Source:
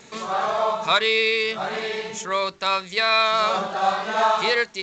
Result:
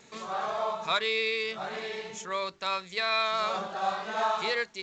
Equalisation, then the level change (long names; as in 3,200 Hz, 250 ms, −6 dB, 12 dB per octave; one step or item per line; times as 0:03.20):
no EQ move
−8.5 dB